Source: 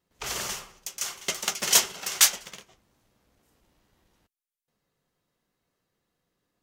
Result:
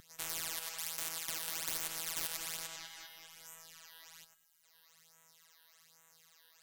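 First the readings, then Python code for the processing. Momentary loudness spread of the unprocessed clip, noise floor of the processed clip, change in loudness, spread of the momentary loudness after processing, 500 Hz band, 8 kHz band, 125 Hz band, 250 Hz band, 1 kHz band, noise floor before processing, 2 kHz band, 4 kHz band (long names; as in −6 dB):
15 LU, −69 dBFS, −14.0 dB, 17 LU, −13.5 dB, −14.5 dB, −9.5 dB, −11.5 dB, −12.0 dB, below −85 dBFS, −12.0 dB, −14.0 dB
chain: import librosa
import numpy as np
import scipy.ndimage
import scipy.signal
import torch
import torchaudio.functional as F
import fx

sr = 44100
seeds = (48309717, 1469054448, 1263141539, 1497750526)

y = fx.spec_steps(x, sr, hold_ms=100)
y = scipy.signal.sosfilt(scipy.signal.butter(4, 75.0, 'highpass', fs=sr, output='sos'), y)
y = fx.low_shelf(y, sr, hz=310.0, db=-11.5)
y = fx.phaser_stages(y, sr, stages=12, low_hz=120.0, high_hz=4700.0, hz=1.2, feedback_pct=25)
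y = fx.tone_stack(y, sr, knobs='10-0-10')
y = y + 0.5 * np.pad(y, (int(6.0 * sr / 1000.0), 0))[:len(y)]
y = 10.0 ** (-24.0 / 20.0) * np.tanh(y / 10.0 ** (-24.0 / 20.0))
y = fx.robotise(y, sr, hz=163.0)
y = fx.echo_filtered(y, sr, ms=199, feedback_pct=63, hz=4400.0, wet_db=-22.0)
y = fx.spectral_comp(y, sr, ratio=10.0)
y = y * librosa.db_to_amplitude(-2.5)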